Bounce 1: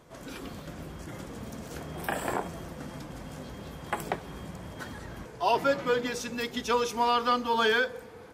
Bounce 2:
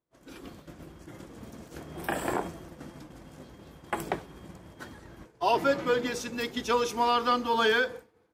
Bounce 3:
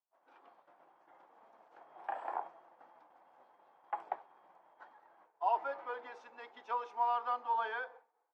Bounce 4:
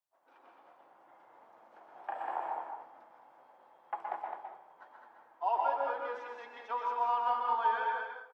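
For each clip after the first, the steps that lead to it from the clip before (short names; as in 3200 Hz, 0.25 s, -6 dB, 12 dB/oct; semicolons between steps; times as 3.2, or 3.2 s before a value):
expander -34 dBFS; bell 330 Hz +6.5 dB 0.32 oct
ladder band-pass 920 Hz, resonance 60%
on a send: echo 0.211 s -5.5 dB; on the sum: plate-style reverb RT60 0.57 s, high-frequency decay 0.8×, pre-delay 0.11 s, DRR 1 dB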